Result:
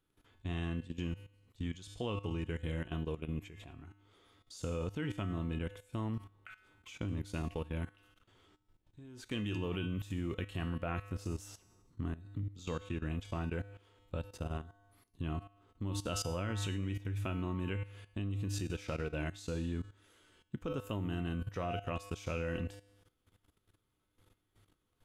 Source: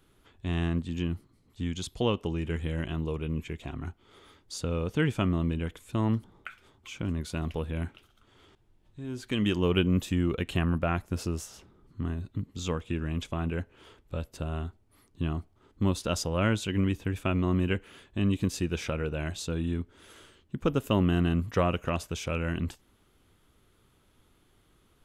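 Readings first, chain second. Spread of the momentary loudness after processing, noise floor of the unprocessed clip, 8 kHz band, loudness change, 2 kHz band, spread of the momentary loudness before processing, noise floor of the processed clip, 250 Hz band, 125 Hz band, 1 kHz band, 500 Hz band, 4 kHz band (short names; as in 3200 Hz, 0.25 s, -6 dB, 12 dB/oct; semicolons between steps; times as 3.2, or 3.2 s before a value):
15 LU, -66 dBFS, -7.5 dB, -9.0 dB, -8.5 dB, 12 LU, -81 dBFS, -10.0 dB, -8.0 dB, -8.5 dB, -9.0 dB, -9.0 dB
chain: resonator 100 Hz, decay 0.82 s, harmonics odd, mix 80%; level quantiser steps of 15 dB; gain +9 dB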